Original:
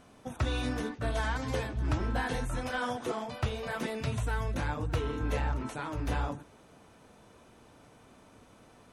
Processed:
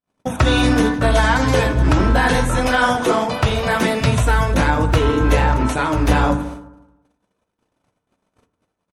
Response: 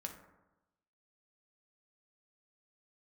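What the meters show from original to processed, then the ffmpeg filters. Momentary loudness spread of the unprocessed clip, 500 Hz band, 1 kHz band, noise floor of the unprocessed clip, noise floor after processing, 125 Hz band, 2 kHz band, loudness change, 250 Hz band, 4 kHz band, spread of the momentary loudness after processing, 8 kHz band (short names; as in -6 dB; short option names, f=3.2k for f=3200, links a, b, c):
4 LU, +17.0 dB, +18.0 dB, -58 dBFS, -77 dBFS, +15.5 dB, +17.5 dB, +16.5 dB, +18.0 dB, +17.5 dB, 4 LU, +17.5 dB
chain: -filter_complex "[0:a]bandreject=f=50:t=h:w=6,bandreject=f=100:t=h:w=6,bandreject=f=150:t=h:w=6,bandreject=f=200:t=h:w=6,bandreject=f=250:t=h:w=6,aecho=1:1:82|164|246|328|410:0.119|0.0701|0.0414|0.0244|0.0144,agate=range=-54dB:threshold=-52dB:ratio=16:detection=peak,asplit=2[a][b];[1:a]atrim=start_sample=2205[c];[b][c]afir=irnorm=-1:irlink=0,volume=2dB[d];[a][d]amix=inputs=2:normalize=0,alimiter=level_in=16dB:limit=-1dB:release=50:level=0:latency=1,volume=-3.5dB"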